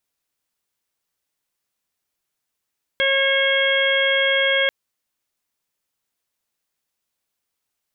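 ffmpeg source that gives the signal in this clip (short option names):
-f lavfi -i "aevalsrc='0.0891*sin(2*PI*544*t)+0.02*sin(2*PI*1088*t)+0.0841*sin(2*PI*1632*t)+0.0891*sin(2*PI*2176*t)+0.0211*sin(2*PI*2720*t)+0.0794*sin(2*PI*3264*t)':d=1.69:s=44100"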